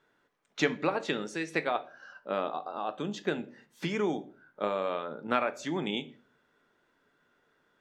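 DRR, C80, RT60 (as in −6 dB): 9.5 dB, 23.0 dB, 0.40 s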